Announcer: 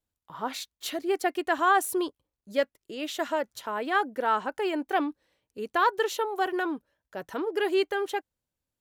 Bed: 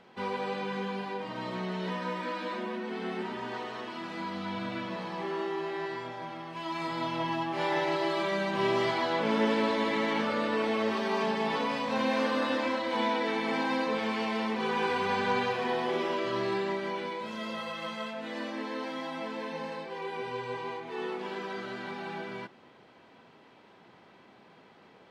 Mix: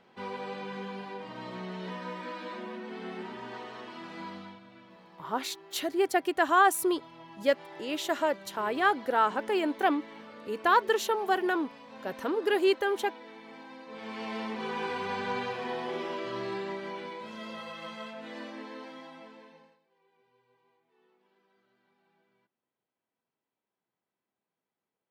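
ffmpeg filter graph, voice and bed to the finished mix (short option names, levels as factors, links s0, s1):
-filter_complex "[0:a]adelay=4900,volume=1.06[s0];[1:a]volume=2.82,afade=t=out:st=4.28:d=0.32:silence=0.211349,afade=t=in:st=13.86:d=0.48:silence=0.211349,afade=t=out:st=18.33:d=1.46:silence=0.0334965[s1];[s0][s1]amix=inputs=2:normalize=0"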